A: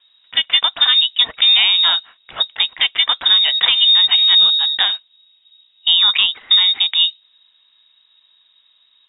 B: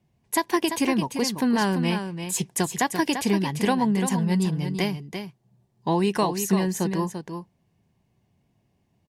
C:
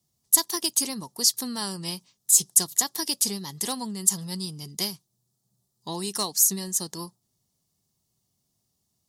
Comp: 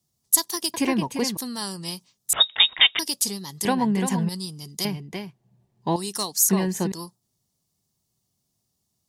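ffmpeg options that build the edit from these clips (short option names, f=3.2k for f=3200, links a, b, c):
-filter_complex "[1:a]asplit=4[a][b][c][d];[2:a]asplit=6[e][f][g][h][i][j];[e]atrim=end=0.742[k];[a]atrim=start=0.738:end=1.372[l];[f]atrim=start=1.368:end=2.332[m];[0:a]atrim=start=2.328:end=2.992[n];[g]atrim=start=2.988:end=3.652[o];[b]atrim=start=3.648:end=4.292[p];[h]atrim=start=4.288:end=4.852[q];[c]atrim=start=4.848:end=5.962[r];[i]atrim=start=5.958:end=6.492[s];[d]atrim=start=6.488:end=6.922[t];[j]atrim=start=6.918[u];[k][l]acrossfade=d=0.004:c1=hsin:c2=hsin[v];[v][m]acrossfade=d=0.004:c1=hsin:c2=hsin[w];[w][n]acrossfade=d=0.004:c1=hsin:c2=hsin[x];[x][o]acrossfade=d=0.004:c1=hsin:c2=hsin[y];[y][p]acrossfade=d=0.004:c1=hsin:c2=hsin[z];[z][q]acrossfade=d=0.004:c1=hsin:c2=hsin[aa];[aa][r]acrossfade=d=0.004:c1=hsin:c2=hsin[ab];[ab][s]acrossfade=d=0.004:c1=hsin:c2=hsin[ac];[ac][t]acrossfade=d=0.004:c1=hsin:c2=hsin[ad];[ad][u]acrossfade=d=0.004:c1=hsin:c2=hsin"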